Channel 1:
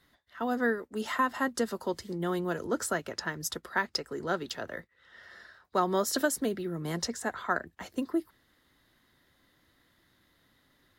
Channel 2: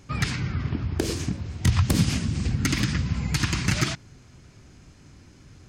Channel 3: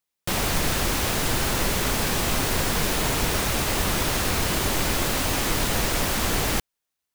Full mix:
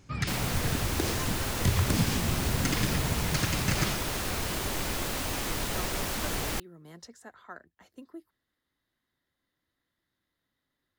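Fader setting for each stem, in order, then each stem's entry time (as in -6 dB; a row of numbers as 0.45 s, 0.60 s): -15.5 dB, -5.5 dB, -8.0 dB; 0.00 s, 0.00 s, 0.00 s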